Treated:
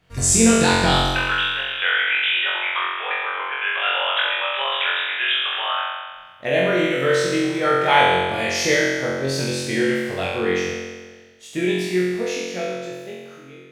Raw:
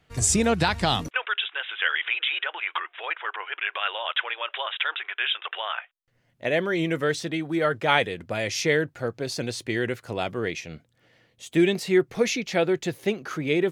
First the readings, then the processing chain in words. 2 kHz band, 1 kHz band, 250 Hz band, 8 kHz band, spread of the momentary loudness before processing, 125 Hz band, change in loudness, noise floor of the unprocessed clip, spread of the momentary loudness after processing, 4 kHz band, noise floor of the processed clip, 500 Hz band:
+6.5 dB, +7.5 dB, +4.5 dB, +6.5 dB, 9 LU, +4.0 dB, +6.0 dB, -67 dBFS, 13 LU, +7.0 dB, -43 dBFS, +4.0 dB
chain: ending faded out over 3.47 s; flutter echo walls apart 3.8 m, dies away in 1.4 s

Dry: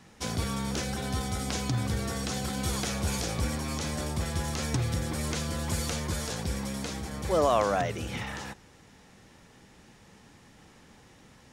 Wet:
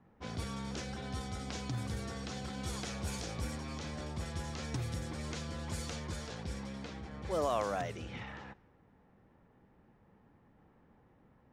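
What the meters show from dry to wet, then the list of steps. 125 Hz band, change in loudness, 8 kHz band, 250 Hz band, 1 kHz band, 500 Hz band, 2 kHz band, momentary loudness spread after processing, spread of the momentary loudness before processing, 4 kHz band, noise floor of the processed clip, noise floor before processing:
-8.5 dB, -9.0 dB, -12.0 dB, -8.5 dB, -8.5 dB, -8.5 dB, -8.5 dB, 9 LU, 8 LU, -9.5 dB, -66 dBFS, -56 dBFS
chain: low-pass opened by the level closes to 1100 Hz, open at -24 dBFS; gain -8.5 dB

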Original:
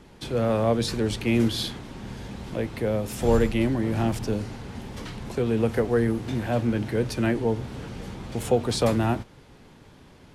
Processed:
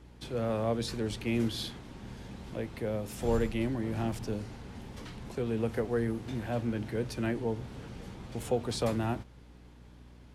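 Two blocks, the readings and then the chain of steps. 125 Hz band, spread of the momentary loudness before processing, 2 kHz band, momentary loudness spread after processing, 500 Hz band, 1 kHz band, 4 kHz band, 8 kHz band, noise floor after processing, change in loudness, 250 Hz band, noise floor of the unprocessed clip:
-8.0 dB, 15 LU, -8.0 dB, 14 LU, -8.0 dB, -8.0 dB, -8.0 dB, -8.0 dB, -53 dBFS, -8.0 dB, -8.0 dB, -51 dBFS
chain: hum 60 Hz, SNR 20 dB; gain -8 dB

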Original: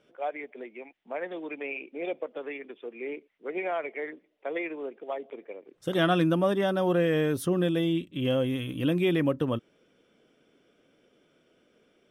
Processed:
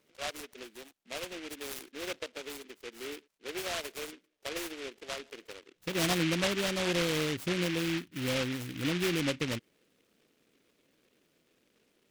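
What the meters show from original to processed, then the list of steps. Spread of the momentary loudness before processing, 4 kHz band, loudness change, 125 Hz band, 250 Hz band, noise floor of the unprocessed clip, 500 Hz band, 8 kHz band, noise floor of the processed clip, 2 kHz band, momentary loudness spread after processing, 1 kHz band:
15 LU, +4.0 dB, -4.5 dB, -5.5 dB, -6.5 dB, -68 dBFS, -7.5 dB, +10.5 dB, -74 dBFS, -0.5 dB, 15 LU, -6.5 dB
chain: spectral gate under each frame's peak -25 dB strong; noise-modulated delay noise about 2300 Hz, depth 0.24 ms; gain -5.5 dB

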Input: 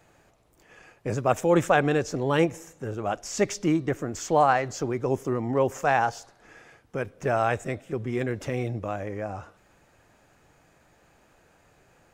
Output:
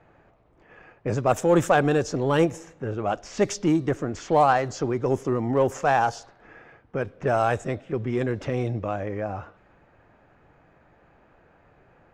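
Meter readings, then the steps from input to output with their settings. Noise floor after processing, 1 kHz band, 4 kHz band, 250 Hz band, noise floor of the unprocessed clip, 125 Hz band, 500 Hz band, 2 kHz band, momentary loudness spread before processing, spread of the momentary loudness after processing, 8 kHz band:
-59 dBFS, +1.5 dB, +0.5 dB, +2.0 dB, -62 dBFS, +2.5 dB, +2.0 dB, 0.0 dB, 12 LU, 12 LU, -1.0 dB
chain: dynamic EQ 2200 Hz, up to -5 dB, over -45 dBFS, Q 2.4; low-pass opened by the level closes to 1900 Hz, open at -19 dBFS; in parallel at -6.5 dB: soft clip -22.5 dBFS, distortion -9 dB

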